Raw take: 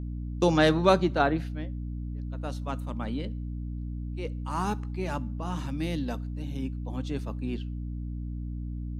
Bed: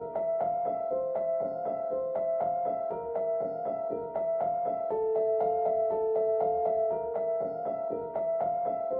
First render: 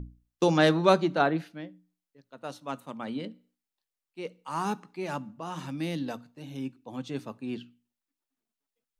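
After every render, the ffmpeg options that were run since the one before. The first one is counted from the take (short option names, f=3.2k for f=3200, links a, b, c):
-af "bandreject=f=60:t=h:w=6,bandreject=f=120:t=h:w=6,bandreject=f=180:t=h:w=6,bandreject=f=240:t=h:w=6,bandreject=f=300:t=h:w=6"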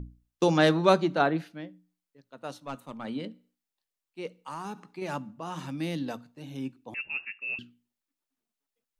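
-filter_complex "[0:a]asettb=1/sr,asplit=3[a][b][c];[a]atrim=end=2.584[d];[b]atrim=start=2.58:end=3.05,asetpts=PTS-STARTPTS,afade=t=in:d=0.004:c=qsin,afade=t=out:st=0.466:d=0.004:c=qsin,aeval=exprs='(tanh(20*val(0)+0.3)-tanh(0.3))/20':c=same[e];[c]atrim=start=3.046[f];[d][e]acrossfade=d=0.004:c1=hsin:c2=qsin[g];[g][f]acrossfade=d=0.004:c1=qsin:c2=hsin,asettb=1/sr,asplit=3[h][i][j];[h]atrim=end=4.414[k];[i]atrim=start=4.41:end=5.02,asetpts=PTS-STARTPTS,afade=t=in:d=0.004:c=qsin,afade=t=out:st=0.606:d=0.004:c=qsin,acompressor=threshold=-33dB:ratio=6:attack=3.2:release=140:knee=1:detection=peak[l];[j]atrim=start=5.016[m];[k][l]acrossfade=d=0.004:c1=hsin:c2=qsin[n];[n][m]acrossfade=d=0.004:c1=qsin:c2=hsin,asettb=1/sr,asplit=3[o][p][q];[o]atrim=end=6.944[r];[p]atrim=start=6.94:end=7.59,asetpts=PTS-STARTPTS,afade=t=in:d=0.004:c=qsin,afade=t=out:st=0.646:d=0.004:c=qsin,lowpass=f=2.5k:t=q:w=0.5098,lowpass=f=2.5k:t=q:w=0.6013,lowpass=f=2.5k:t=q:w=0.9,lowpass=f=2.5k:t=q:w=2.563,afreqshift=-2900[s];[q]atrim=start=7.586[t];[r][s]acrossfade=d=0.004:c1=hsin:c2=qsin[u];[u][t]acrossfade=d=0.004:c1=qsin:c2=hsin"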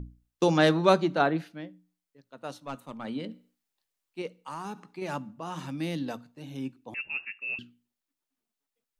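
-filter_complex "[0:a]asplit=3[a][b][c];[a]atrim=end=3.292[d];[b]atrim=start=3.288:end=4.222,asetpts=PTS-STARTPTS,volume=4dB[e];[c]atrim=start=4.218[f];[d][e]acrossfade=d=0.004:c1=hsin:c2=hsin[g];[g][f]acrossfade=d=0.004:c1=hsin:c2=hsin"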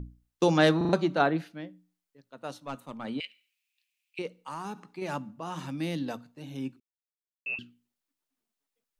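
-filter_complex "[0:a]asettb=1/sr,asplit=3[a][b][c];[a]atrim=end=3.204[d];[b]atrim=start=3.2:end=4.19,asetpts=PTS-STARTPTS,afade=t=in:d=0.004:c=qsin,afade=t=out:st=0.986:d=0.004:c=qsin,highpass=f=2.5k:t=q:w=7.5[e];[c]atrim=start=4.186[f];[d][e]acrossfade=d=0.004:c1=hsin:c2=qsin[g];[g][f]acrossfade=d=0.004:c1=qsin:c2=hsin,asplit=7[h][i][j][k][l][m][n];[h]atrim=end=0.812[o];[i]atrim=start=0.768:end=0.812[p];[j]atrim=start=0.768:end=0.812[q];[k]atrim=start=0.768:end=0.812[r];[l]atrim=start=0.928:end=6.8,asetpts=PTS-STARTPTS,afade=t=out:st=5.868:d=0.004:c=hsin[s];[m]atrim=start=6.8:end=7.46,asetpts=PTS-STARTPTS,volume=0[t];[n]atrim=start=7.46,asetpts=PTS-STARTPTS,afade=t=in:d=0.004:c=hsin[u];[o][p]acrossfade=d=0.004:c1=hsin:c2=hsin[v];[v][q]acrossfade=d=0.004:c1=hsin:c2=hsin[w];[w][r]acrossfade=d=0.004:c1=hsin:c2=hsin[x];[s][t][u]concat=n=3:v=0:a=1[y];[x][y]acrossfade=d=0.004:c1=hsin:c2=hsin"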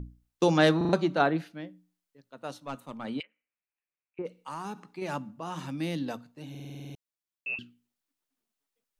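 -filter_complex "[0:a]asplit=3[a][b][c];[a]afade=t=out:st=3.21:d=0.02[d];[b]lowpass=f=1.5k:w=0.5412,lowpass=f=1.5k:w=1.3066,afade=t=in:st=3.21:d=0.02,afade=t=out:st=4.25:d=0.02[e];[c]afade=t=in:st=4.25:d=0.02[f];[d][e][f]amix=inputs=3:normalize=0,asplit=10[g][h][i][j][k][l][m][n][o][p];[g]atrim=end=6.552[q];[h]atrim=start=6.498:end=6.552[r];[i]atrim=start=6.498:end=6.552[s];[j]atrim=start=6.498:end=6.552[t];[k]atrim=start=6.498:end=6.552[u];[l]atrim=start=6.498:end=6.552[v];[m]atrim=start=6.498:end=6.552[w];[n]atrim=start=6.498:end=6.552[x];[o]atrim=start=6.498:end=6.552[y];[p]atrim=start=6.948[z];[q][r]acrossfade=d=0.004:c1=hsin:c2=hsin[aa];[aa][s]acrossfade=d=0.004:c1=hsin:c2=hsin[ab];[ab][t]acrossfade=d=0.004:c1=hsin:c2=hsin[ac];[ac][u]acrossfade=d=0.004:c1=hsin:c2=hsin[ad];[ad][v]acrossfade=d=0.004:c1=hsin:c2=hsin[ae];[ae][w]acrossfade=d=0.004:c1=hsin:c2=hsin[af];[af][x]acrossfade=d=0.004:c1=hsin:c2=hsin[ag];[ag][y]acrossfade=d=0.004:c1=hsin:c2=hsin[ah];[ah][z]acrossfade=d=0.004:c1=hsin:c2=hsin"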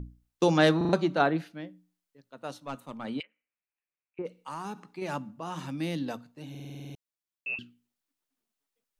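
-af anull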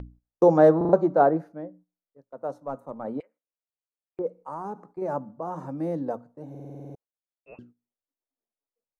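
-af "firequalizer=gain_entry='entry(240,0);entry(510,10);entry(2900,-27);entry(5800,-14)':delay=0.05:min_phase=1,agate=range=-11dB:threshold=-53dB:ratio=16:detection=peak"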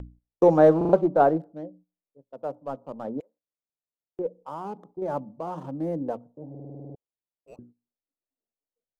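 -filter_complex "[0:a]acrossover=split=940[a][b];[b]aeval=exprs='sgn(val(0))*max(abs(val(0))-0.00188,0)':c=same[c];[a][c]amix=inputs=2:normalize=0,aeval=exprs='0.562*(cos(1*acos(clip(val(0)/0.562,-1,1)))-cos(1*PI/2))+0.00398*(cos(8*acos(clip(val(0)/0.562,-1,1)))-cos(8*PI/2))':c=same"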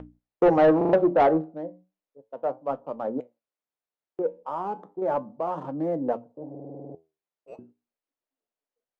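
-filter_complex "[0:a]flanger=delay=6.4:depth=6.4:regen=75:speed=0.35:shape=triangular,asplit=2[a][b];[b]highpass=f=720:p=1,volume=20dB,asoftclip=type=tanh:threshold=-8.5dB[c];[a][c]amix=inputs=2:normalize=0,lowpass=f=1k:p=1,volume=-6dB"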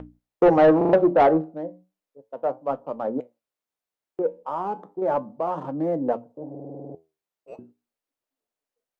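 -af "volume=2.5dB"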